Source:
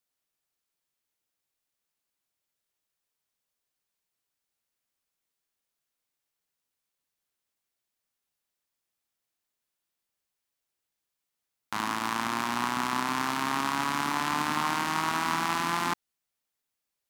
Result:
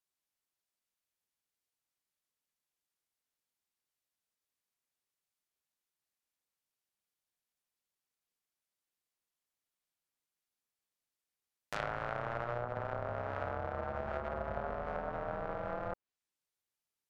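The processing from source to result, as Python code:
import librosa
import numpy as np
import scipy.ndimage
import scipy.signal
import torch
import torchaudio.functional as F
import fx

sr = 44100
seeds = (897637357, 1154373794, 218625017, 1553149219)

y = x * np.sin(2.0 * np.pi * 360.0 * np.arange(len(x)) / sr)
y = fx.env_lowpass_down(y, sr, base_hz=810.0, full_db=-27.0)
y = F.gain(torch.from_numpy(y), -3.0).numpy()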